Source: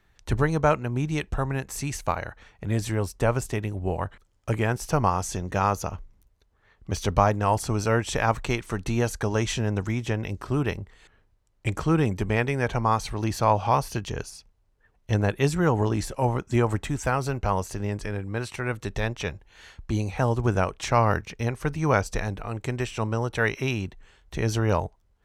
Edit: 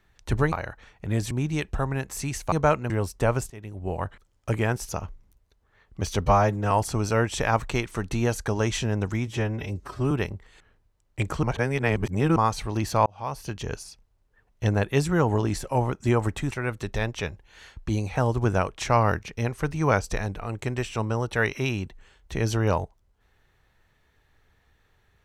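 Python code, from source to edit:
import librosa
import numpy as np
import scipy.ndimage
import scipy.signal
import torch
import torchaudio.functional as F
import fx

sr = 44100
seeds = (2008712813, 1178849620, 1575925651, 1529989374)

y = fx.edit(x, sr, fx.swap(start_s=0.52, length_s=0.38, other_s=2.11, other_length_s=0.79),
    fx.fade_in_from(start_s=3.5, length_s=0.56, floor_db=-20.0),
    fx.cut(start_s=4.89, length_s=0.9),
    fx.stretch_span(start_s=7.16, length_s=0.3, factor=1.5),
    fx.stretch_span(start_s=10.02, length_s=0.56, factor=1.5),
    fx.reverse_span(start_s=11.9, length_s=0.93),
    fx.fade_in_span(start_s=13.53, length_s=0.65),
    fx.cut(start_s=16.98, length_s=1.55), tone=tone)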